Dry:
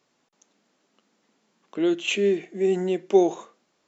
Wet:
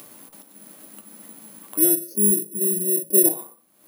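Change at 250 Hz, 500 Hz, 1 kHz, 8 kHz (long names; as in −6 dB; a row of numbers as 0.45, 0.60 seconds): −1.0 dB, −5.5 dB, below −10 dB, can't be measured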